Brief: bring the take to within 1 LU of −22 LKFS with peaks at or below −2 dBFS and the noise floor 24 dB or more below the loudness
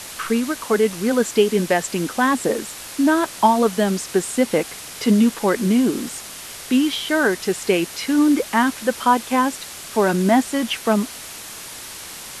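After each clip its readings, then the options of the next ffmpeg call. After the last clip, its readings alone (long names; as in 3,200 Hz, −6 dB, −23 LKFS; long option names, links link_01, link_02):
background noise floor −36 dBFS; target noise floor −44 dBFS; integrated loudness −19.5 LKFS; sample peak −2.5 dBFS; target loudness −22.0 LKFS
→ -af "afftdn=noise_reduction=8:noise_floor=-36"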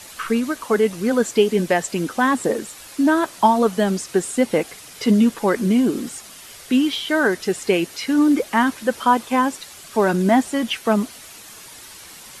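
background noise floor −41 dBFS; target noise floor −44 dBFS
→ -af "afftdn=noise_reduction=6:noise_floor=-41"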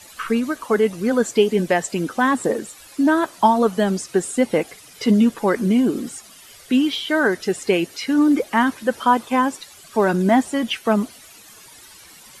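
background noise floor −45 dBFS; integrated loudness −19.5 LKFS; sample peak −3.0 dBFS; target loudness −22.0 LKFS
→ -af "volume=-2.5dB"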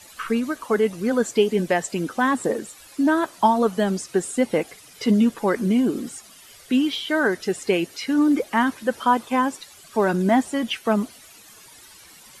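integrated loudness −22.0 LKFS; sample peak −5.5 dBFS; background noise floor −48 dBFS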